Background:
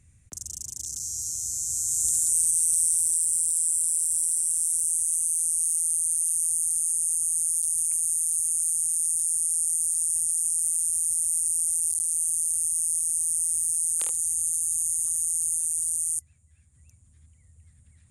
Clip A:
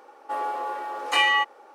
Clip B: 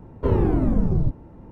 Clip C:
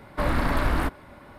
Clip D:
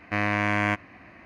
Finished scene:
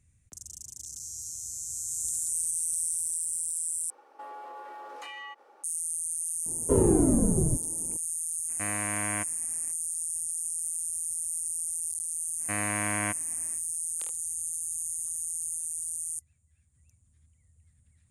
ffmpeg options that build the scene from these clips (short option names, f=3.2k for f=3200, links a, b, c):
-filter_complex "[4:a]asplit=2[a][b];[0:a]volume=-7.5dB[c];[1:a]acompressor=threshold=-32dB:ratio=6:attack=3.2:release=140:knee=1:detection=peak[d];[2:a]equalizer=f=360:w=0.53:g=10.5[e];[b]highpass=46[f];[c]asplit=2[g][h];[g]atrim=end=3.904[i];[d]atrim=end=1.74,asetpts=PTS-STARTPTS,volume=-7.5dB[j];[h]atrim=start=5.636[k];[e]atrim=end=1.51,asetpts=PTS-STARTPTS,volume=-9.5dB,afade=t=in:d=0.004:c=hsin,afade=t=out:st=1.506:d=0.004:c=hsin,adelay=6460[l];[a]atrim=end=1.25,asetpts=PTS-STARTPTS,volume=-9.5dB,afade=t=in:d=0.02,afade=t=out:st=1.23:d=0.02,adelay=8480[m];[f]atrim=end=1.25,asetpts=PTS-STARTPTS,volume=-7dB,afade=t=in:d=0.1,afade=t=out:st=1.15:d=0.1,adelay=12370[n];[i][j]acrossfade=d=0.004:c1=hsin:c2=hsin[o];[o][k]acrossfade=d=0.004:c1=hsin:c2=hsin[p];[p][l][m][n]amix=inputs=4:normalize=0"